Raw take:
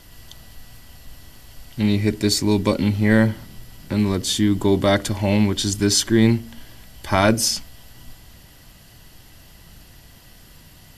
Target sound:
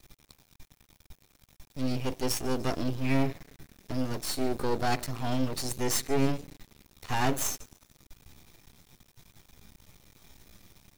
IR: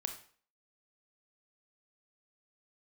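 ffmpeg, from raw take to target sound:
-filter_complex "[0:a]asetrate=53981,aresample=44100,atempo=0.816958,asplit=5[link_01][link_02][link_03][link_04][link_05];[link_02]adelay=146,afreqshift=-120,volume=-24dB[link_06];[link_03]adelay=292,afreqshift=-240,volume=-28.4dB[link_07];[link_04]adelay=438,afreqshift=-360,volume=-32.9dB[link_08];[link_05]adelay=584,afreqshift=-480,volume=-37.3dB[link_09];[link_01][link_06][link_07][link_08][link_09]amix=inputs=5:normalize=0,aeval=exprs='max(val(0),0)':channel_layout=same,volume=-6dB"

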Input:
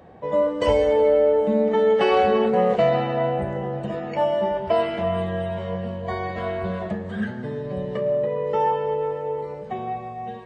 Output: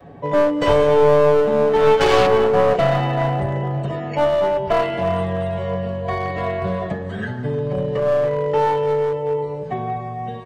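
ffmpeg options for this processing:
ffmpeg -i in.wav -filter_complex "[0:a]asettb=1/sr,asplit=3[link_01][link_02][link_03];[link_01]atrim=end=1.764[link_04];[link_02]atrim=start=1.76:end=2.27,asetpts=PTS-STARTPTS,afade=type=in:duration=0.004:curve=qsin,afade=type=out:start_time=0.506:duration=0.004:curve=qsin,aeval=exprs='0.398*(cos(1*acos(clip(val(0)/0.398,-1,1)))-cos(1*PI/2))+0.0708*(cos(7*acos(clip(val(0)/0.398,-1,1)))-cos(7*PI/2))':channel_layout=same[link_05];[link_03]atrim=start=2.266[link_06];[link_04][link_05]acrossfade=duration=0.004:curve1=hsin:curve2=qsin[link_07];[link_07][link_06]acrossfade=duration=0.004:curve1=qsin:curve2=hsin,aecho=1:1:7.1:0.66,acrossover=split=350|540[link_08][link_09][link_10];[link_08]acontrast=41[link_11];[link_11][link_09][link_10]amix=inputs=3:normalize=0,adynamicequalizer=threshold=0.0224:dfrequency=210:dqfactor=1.1:tfrequency=210:tqfactor=1.1:attack=5:release=100:ratio=0.375:range=2.5:mode=cutabove:tftype=bell,aeval=exprs='clip(val(0),-1,0.112)':channel_layout=same,volume=2.5dB" out.wav

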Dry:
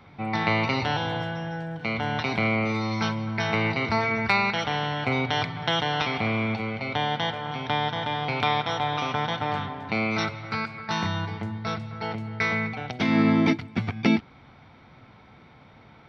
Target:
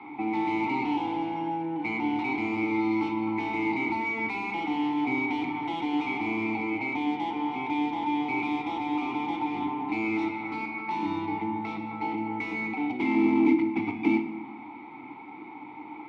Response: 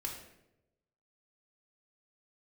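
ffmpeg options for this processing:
-filter_complex "[0:a]asplit=2[link_01][link_02];[link_02]highpass=frequency=720:poles=1,volume=28dB,asoftclip=type=tanh:threshold=-7.5dB[link_03];[link_01][link_03]amix=inputs=2:normalize=0,lowpass=frequency=1200:poles=1,volume=-6dB,acrossover=split=450|3000[link_04][link_05][link_06];[link_05]acompressor=threshold=-26dB:ratio=6[link_07];[link_04][link_07][link_06]amix=inputs=3:normalize=0,asplit=3[link_08][link_09][link_10];[link_08]bandpass=frequency=300:width_type=q:width=8,volume=0dB[link_11];[link_09]bandpass=frequency=870:width_type=q:width=8,volume=-6dB[link_12];[link_10]bandpass=frequency=2240:width_type=q:width=8,volume=-9dB[link_13];[link_11][link_12][link_13]amix=inputs=3:normalize=0,asplit=2[link_14][link_15];[1:a]atrim=start_sample=2205[link_16];[link_15][link_16]afir=irnorm=-1:irlink=0,volume=0.5dB[link_17];[link_14][link_17]amix=inputs=2:normalize=0"

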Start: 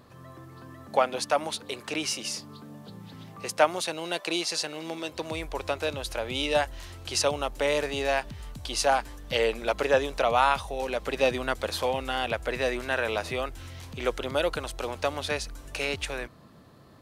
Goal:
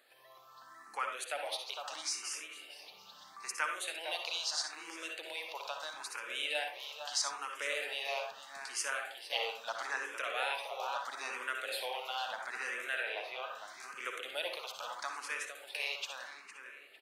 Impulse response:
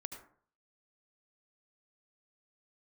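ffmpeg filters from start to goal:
-filter_complex "[0:a]asettb=1/sr,asplit=3[link_01][link_02][link_03];[link_01]atrim=end=13.034[link_04];[link_02]atrim=start=13.03:end=13.68,asetpts=PTS-STARTPTS,afade=type=in:duration=0.004:curve=qsin,afade=type=out:start_time=0.646:duration=0.004:curve=qsin,acrossover=split=3400[link_05][link_06];[link_06]acompressor=threshold=-56dB:ratio=4:attack=1:release=60[link_07];[link_05][link_07]amix=inputs=2:normalize=0[link_08];[link_03]atrim=start=13.676[link_09];[link_04][link_08]acrossfade=duration=0.004:curve1=hsin:curve2=qsin[link_10];[link_10][link_09]acrossfade=duration=0.004:curve1=qsin:curve2=hsin,highpass=1000,asplit=2[link_11][link_12];[link_12]acompressor=threshold=-40dB:ratio=6,volume=-1dB[link_13];[link_11][link_13]amix=inputs=2:normalize=0,asplit=2[link_14][link_15];[link_15]adelay=456,lowpass=frequency=3900:poles=1,volume=-8dB,asplit=2[link_16][link_17];[link_17]adelay=456,lowpass=frequency=3900:poles=1,volume=0.35,asplit=2[link_18][link_19];[link_19]adelay=456,lowpass=frequency=3900:poles=1,volume=0.35,asplit=2[link_20][link_21];[link_21]adelay=456,lowpass=frequency=3900:poles=1,volume=0.35[link_22];[link_14][link_16][link_18][link_20][link_22]amix=inputs=5:normalize=0[link_23];[1:a]atrim=start_sample=2205,asetrate=57330,aresample=44100[link_24];[link_23][link_24]afir=irnorm=-1:irlink=0,asplit=2[link_25][link_26];[link_26]afreqshift=0.77[link_27];[link_25][link_27]amix=inputs=2:normalize=1"

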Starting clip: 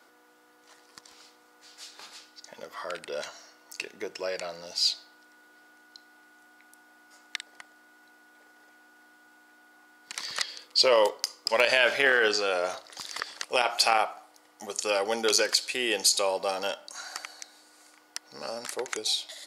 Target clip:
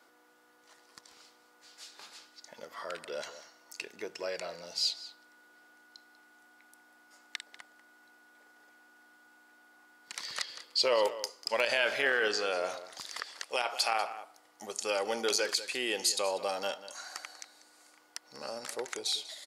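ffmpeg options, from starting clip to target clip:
ffmpeg -i in.wav -filter_complex "[0:a]asplit=2[link_01][link_02];[link_02]alimiter=limit=-17dB:level=0:latency=1:release=136,volume=-2.5dB[link_03];[link_01][link_03]amix=inputs=2:normalize=0,asettb=1/sr,asplit=3[link_04][link_05][link_06];[link_04]atrim=end=13.164[link_07];[link_05]atrim=start=13.16:end=14.04,asetpts=PTS-STARTPTS,afade=type=in:duration=0.004:curve=qsin,afade=type=out:start_time=0.876:duration=0.004:curve=qsin,highpass=frequency=350:poles=1[link_08];[link_06]atrim=start=14.036[link_09];[link_07][link_08]acrossfade=duration=0.004:curve1=hsin:curve2=qsin[link_10];[link_10][link_09]acrossfade=duration=0.004:curve1=qsin:curve2=hsin,asplit=2[link_11][link_12];[link_12]adelay=192.4,volume=-14dB,highshelf=frequency=4000:gain=-4.33[link_13];[link_11][link_13]amix=inputs=2:normalize=0,volume=-9dB" out.wav

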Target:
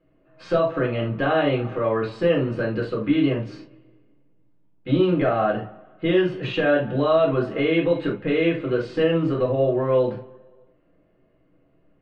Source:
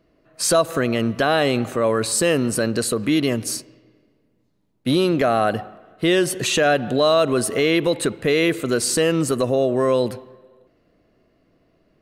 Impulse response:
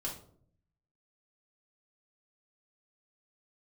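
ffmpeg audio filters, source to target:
-filter_complex "[0:a]lowpass=frequency=3000:width=0.5412,lowpass=frequency=3000:width=1.3066[link_01];[1:a]atrim=start_sample=2205,atrim=end_sample=3969[link_02];[link_01][link_02]afir=irnorm=-1:irlink=0,volume=-4dB"

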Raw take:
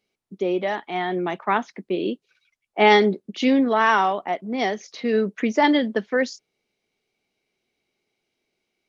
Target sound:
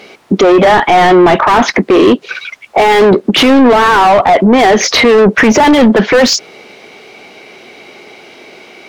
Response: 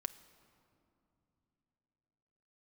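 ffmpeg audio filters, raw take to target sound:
-filter_complex "[0:a]asplit=2[link_01][link_02];[link_02]highpass=frequency=720:poles=1,volume=34dB,asoftclip=type=tanh:threshold=-4.5dB[link_03];[link_01][link_03]amix=inputs=2:normalize=0,lowpass=frequency=1200:poles=1,volume=-6dB,acompressor=threshold=-21dB:ratio=6,alimiter=level_in=22.5dB:limit=-1dB:release=50:level=0:latency=1,volume=-1dB"

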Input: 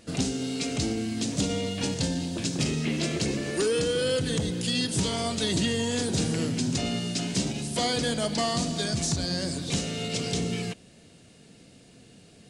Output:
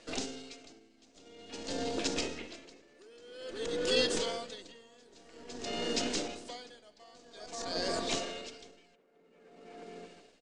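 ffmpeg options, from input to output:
ffmpeg -i in.wav -filter_complex "[0:a]lowpass=frequency=7600:width=0.5412,lowpass=frequency=7600:width=1.3066,bass=frequency=250:gain=-10,treble=frequency=4000:gain=-2,acrossover=split=220|1900[link_01][link_02][link_03];[link_01]aeval=exprs='abs(val(0))':channel_layout=same[link_04];[link_02]aecho=1:1:640|1056|1326|1502|1616:0.631|0.398|0.251|0.158|0.1[link_05];[link_04][link_05][link_03]amix=inputs=3:normalize=0,atempo=1.2,aeval=exprs='val(0)*pow(10,-29*(0.5-0.5*cos(2*PI*0.5*n/s))/20)':channel_layout=same" out.wav

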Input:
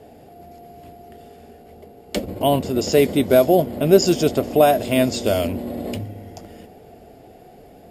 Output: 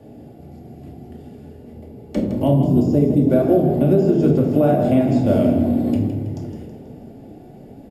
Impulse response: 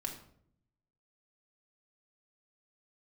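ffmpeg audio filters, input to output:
-filter_complex "[0:a]aresample=32000,aresample=44100,acrossover=split=260|2100[link_01][link_02][link_03];[link_03]acompressor=threshold=-40dB:ratio=6[link_04];[link_01][link_02][link_04]amix=inputs=3:normalize=0,equalizer=frequency=140:width=0.41:gain=13,flanger=delay=8.1:depth=7.7:regen=-73:speed=1.7:shape=triangular,asettb=1/sr,asplit=3[link_05][link_06][link_07];[link_05]atrim=end=2.514[link_08];[link_06]atrim=start=2.51:end=3.27,asetpts=PTS-STARTPTS,afade=type=in:duration=0.004:curve=qsin,afade=type=out:start_time=0.756:duration=0.004:curve=qsin,equalizer=frequency=1800:width=0.55:gain=-12[link_09];[link_07]atrim=start=3.266[link_10];[link_08][link_09]acrossfade=duration=0.004:curve1=hsin:curve2=qsin[link_11];[link_11][link_10]acrossfade=duration=0.004:curve1=qsin:curve2=hsin[link_12];[1:a]atrim=start_sample=2205[link_13];[link_12][link_13]afir=irnorm=-1:irlink=0,alimiter=limit=-6.5dB:level=0:latency=1:release=205,asplit=6[link_14][link_15][link_16][link_17][link_18][link_19];[link_15]adelay=162,afreqshift=36,volume=-10dB[link_20];[link_16]adelay=324,afreqshift=72,volume=-16.4dB[link_21];[link_17]adelay=486,afreqshift=108,volume=-22.8dB[link_22];[link_18]adelay=648,afreqshift=144,volume=-29.1dB[link_23];[link_19]adelay=810,afreqshift=180,volume=-35.5dB[link_24];[link_14][link_20][link_21][link_22][link_23][link_24]amix=inputs=6:normalize=0"

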